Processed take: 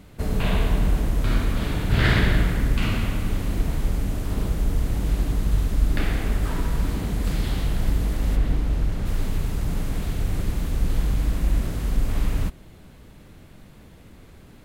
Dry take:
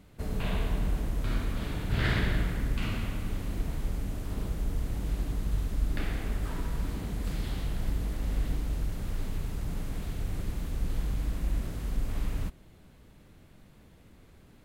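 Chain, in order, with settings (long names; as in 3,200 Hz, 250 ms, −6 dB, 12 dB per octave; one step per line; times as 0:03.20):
0:08.35–0:09.05: high-shelf EQ 4,300 Hz → 6,600 Hz −10 dB
level +8.5 dB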